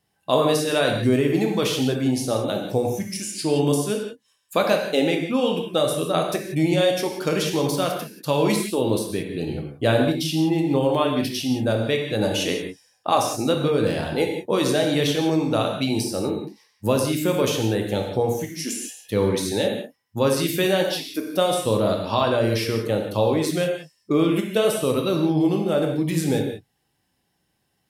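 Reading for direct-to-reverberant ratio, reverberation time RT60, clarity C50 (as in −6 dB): 1.5 dB, non-exponential decay, 4.0 dB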